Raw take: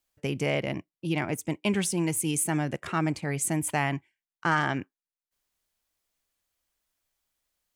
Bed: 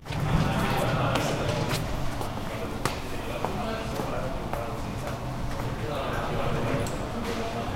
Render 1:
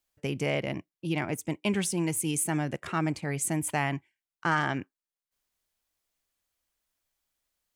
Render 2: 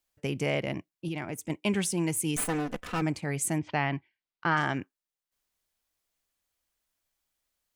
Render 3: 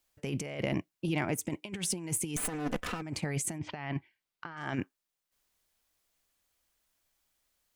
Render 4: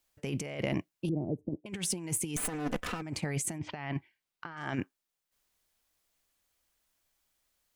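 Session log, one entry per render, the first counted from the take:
gain -1.5 dB
1.08–1.5 compressor 2:1, threshold -34 dBFS; 2.36–3.02 minimum comb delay 4 ms; 3.58–4.57 steep low-pass 5000 Hz 48 dB/oct
negative-ratio compressor -33 dBFS, ratio -0.5
1.09–1.66 inverse Chebyshev low-pass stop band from 1500 Hz, stop band 50 dB

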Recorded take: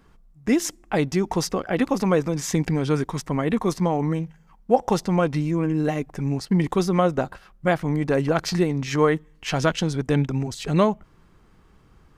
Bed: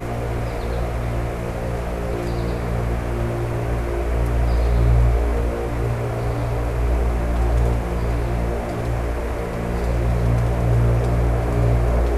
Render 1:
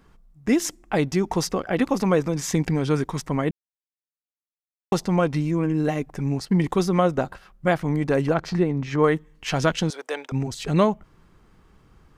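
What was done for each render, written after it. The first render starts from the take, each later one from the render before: 3.51–4.92 mute; 8.34–9.04 LPF 1700 Hz 6 dB/oct; 9.9–10.32 HPF 490 Hz 24 dB/oct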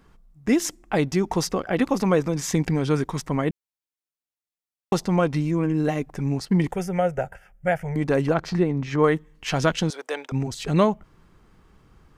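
6.72–7.96 fixed phaser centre 1100 Hz, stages 6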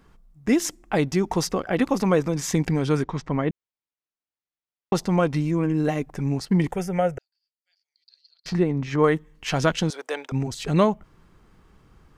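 3.03–4.95 air absorption 150 m; 7.18–8.46 Butterworth band-pass 4500 Hz, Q 7.5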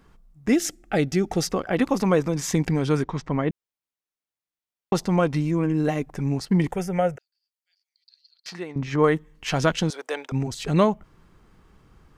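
0.55–1.47 Butterworth band-stop 1000 Hz, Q 2.9; 7.16–8.76 HPF 1400 Hz 6 dB/oct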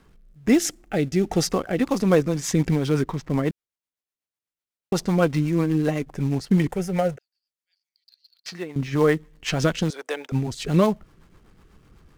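in parallel at -9.5 dB: companded quantiser 4-bit; on the sum: rotary speaker horn 1.2 Hz, later 8 Hz, at 1.58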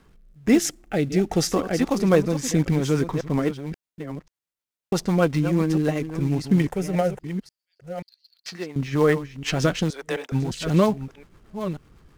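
reverse delay 0.535 s, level -10.5 dB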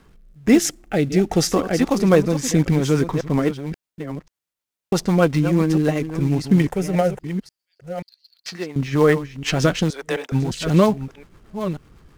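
gain +3.5 dB; limiter -1 dBFS, peak gain reduction 1 dB

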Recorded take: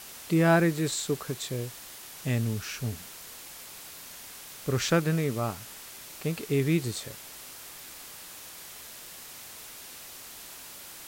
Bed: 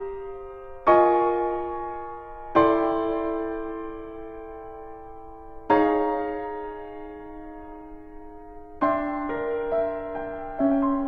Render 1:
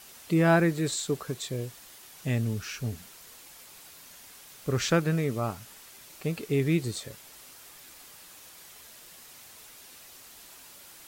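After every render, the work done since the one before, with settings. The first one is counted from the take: denoiser 6 dB, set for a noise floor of -45 dBFS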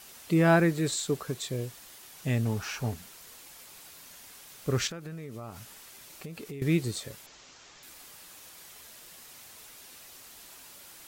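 2.45–2.94 bell 840 Hz +14 dB 1 oct; 4.87–6.62 compressor 8:1, threshold -37 dBFS; 7.26–7.83 steep low-pass 7400 Hz 96 dB/oct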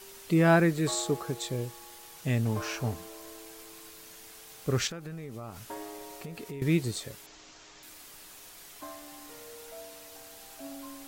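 add bed -22 dB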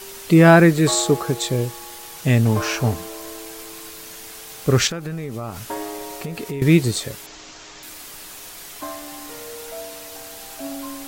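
gain +11.5 dB; limiter -3 dBFS, peak gain reduction 1.5 dB

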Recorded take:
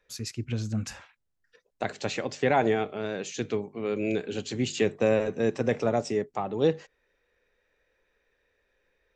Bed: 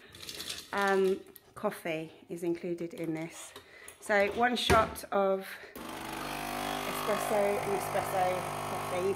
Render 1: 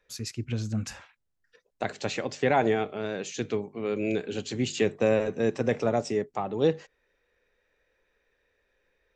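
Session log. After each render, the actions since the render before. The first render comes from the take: nothing audible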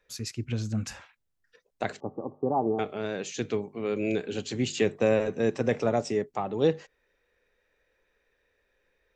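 2–2.79 rippled Chebyshev low-pass 1200 Hz, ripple 6 dB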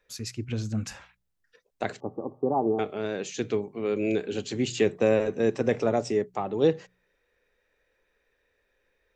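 de-hum 60.79 Hz, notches 3; dynamic EQ 370 Hz, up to +3 dB, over -38 dBFS, Q 1.8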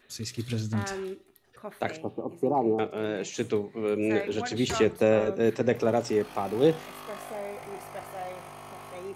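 add bed -8 dB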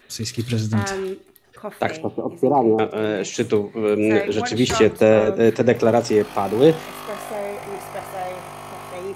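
gain +8.5 dB; limiter -3 dBFS, peak gain reduction 1.5 dB

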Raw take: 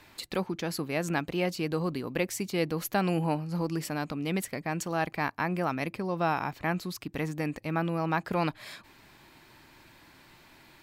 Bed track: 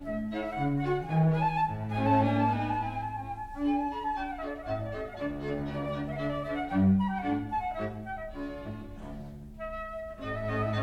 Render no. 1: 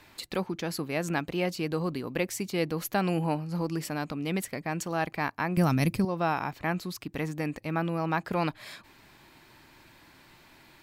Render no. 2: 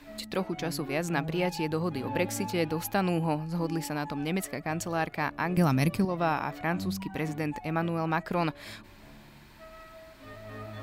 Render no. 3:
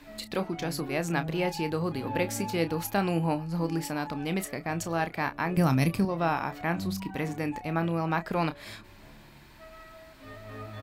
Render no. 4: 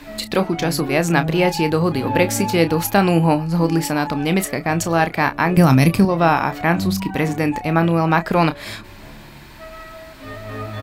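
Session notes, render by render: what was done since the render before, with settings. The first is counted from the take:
5.57–6.05 tone controls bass +15 dB, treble +13 dB
add bed track -11.5 dB
doubler 30 ms -11 dB
gain +12 dB; limiter -2 dBFS, peak gain reduction 2.5 dB

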